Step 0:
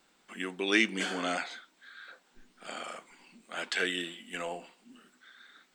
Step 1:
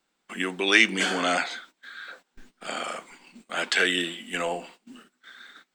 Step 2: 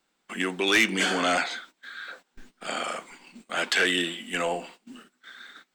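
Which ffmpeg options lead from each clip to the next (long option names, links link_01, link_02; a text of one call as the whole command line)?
ffmpeg -i in.wav -filter_complex "[0:a]agate=range=-17dB:threshold=-57dB:ratio=16:detection=peak,acrossover=split=490[link_01][link_02];[link_01]alimiter=level_in=9.5dB:limit=-24dB:level=0:latency=1,volume=-9.5dB[link_03];[link_03][link_02]amix=inputs=2:normalize=0,volume=8.5dB" out.wav
ffmpeg -i in.wav -af "asoftclip=type=tanh:threshold=-15.5dB,volume=1.5dB" out.wav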